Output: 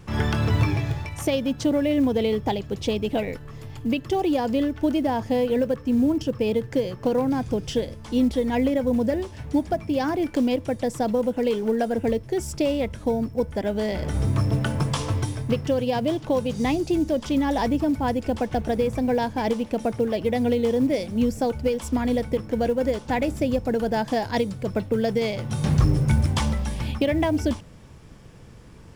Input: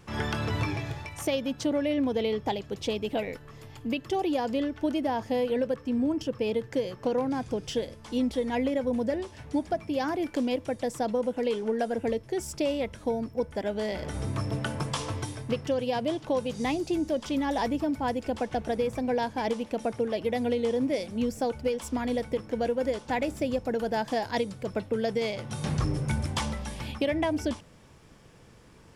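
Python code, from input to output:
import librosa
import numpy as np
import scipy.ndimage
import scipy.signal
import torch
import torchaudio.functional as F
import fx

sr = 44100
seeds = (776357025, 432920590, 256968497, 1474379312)

y = fx.quant_float(x, sr, bits=4)
y = fx.low_shelf(y, sr, hz=220.0, db=8.5)
y = y * librosa.db_to_amplitude(3.0)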